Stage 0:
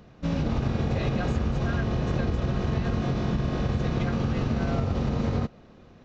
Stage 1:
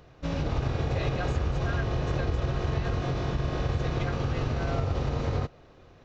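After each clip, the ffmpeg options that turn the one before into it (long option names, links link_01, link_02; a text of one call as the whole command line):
ffmpeg -i in.wav -af "equalizer=frequency=210:width_type=o:width=0.49:gain=-14.5" out.wav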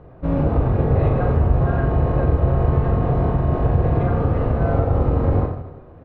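ffmpeg -i in.wav -filter_complex "[0:a]lowpass=1000,asplit=2[link_01][link_02];[link_02]aecho=0:1:40|90|152.5|230.6|328.3:0.631|0.398|0.251|0.158|0.1[link_03];[link_01][link_03]amix=inputs=2:normalize=0,volume=9dB" out.wav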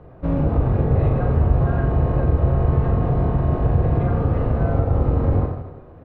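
ffmpeg -i in.wav -filter_complex "[0:a]acrossover=split=280[link_01][link_02];[link_02]acompressor=threshold=-27dB:ratio=2[link_03];[link_01][link_03]amix=inputs=2:normalize=0" out.wav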